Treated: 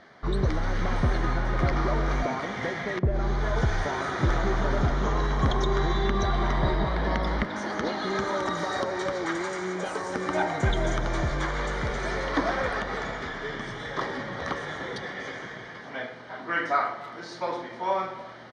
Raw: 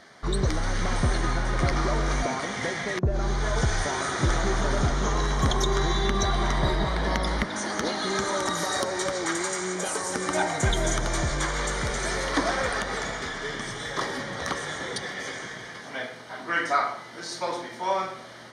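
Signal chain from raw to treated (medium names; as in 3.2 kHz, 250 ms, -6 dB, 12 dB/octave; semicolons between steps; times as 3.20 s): low-pass 5.1 kHz 12 dB/octave; treble shelf 3.6 kHz -9.5 dB; speakerphone echo 290 ms, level -17 dB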